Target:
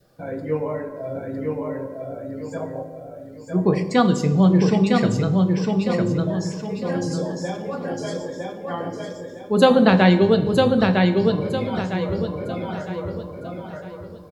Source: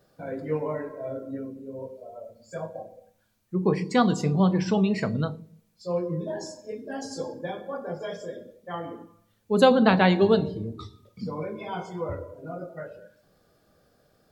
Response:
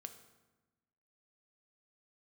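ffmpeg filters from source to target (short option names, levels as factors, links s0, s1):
-filter_complex "[0:a]aecho=1:1:956|1912|2868|3824|4780:0.708|0.255|0.0917|0.033|0.0119,asplit=2[s0][s1];[1:a]atrim=start_sample=2205,asetrate=33075,aresample=44100,lowshelf=f=97:g=8[s2];[s1][s2]afir=irnorm=-1:irlink=0,volume=2.82[s3];[s0][s3]amix=inputs=2:normalize=0,adynamicequalizer=threshold=0.0282:dfrequency=1000:dqfactor=1.7:tfrequency=1000:tqfactor=1.7:attack=5:release=100:ratio=0.375:range=2.5:mode=cutabove:tftype=bell,volume=0.562"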